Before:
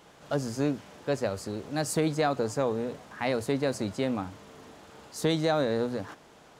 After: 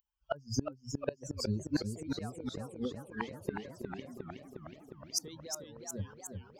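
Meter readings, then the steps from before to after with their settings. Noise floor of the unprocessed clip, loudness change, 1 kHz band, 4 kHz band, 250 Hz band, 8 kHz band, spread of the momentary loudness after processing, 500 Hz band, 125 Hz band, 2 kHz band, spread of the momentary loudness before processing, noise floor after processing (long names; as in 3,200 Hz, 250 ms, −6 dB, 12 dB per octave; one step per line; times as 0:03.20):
−55 dBFS, −9.5 dB, −12.5 dB, −5.0 dB, −8.0 dB, −1.5 dB, 11 LU, −13.0 dB, −6.5 dB, −11.0 dB, 15 LU, −65 dBFS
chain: spectral dynamics exaggerated over time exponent 3
in parallel at +2 dB: downward compressor, threshold −40 dBFS, peak gain reduction 13.5 dB
on the sum: gate with flip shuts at −29 dBFS, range −30 dB
feedback echo with a swinging delay time 363 ms, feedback 71%, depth 155 cents, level −5.5 dB
level +10.5 dB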